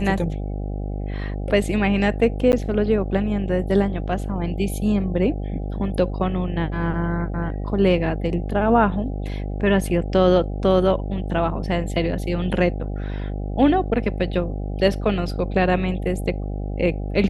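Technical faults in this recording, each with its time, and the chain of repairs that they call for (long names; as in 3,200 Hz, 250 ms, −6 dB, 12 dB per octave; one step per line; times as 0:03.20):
mains buzz 50 Hz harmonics 16 −27 dBFS
0:02.52–0:02.53: drop-out 9.7 ms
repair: hum removal 50 Hz, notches 16
repair the gap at 0:02.52, 9.7 ms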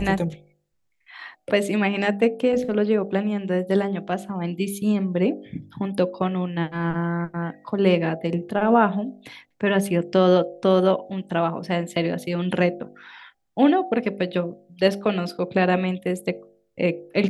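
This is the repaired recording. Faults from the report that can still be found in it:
none of them is left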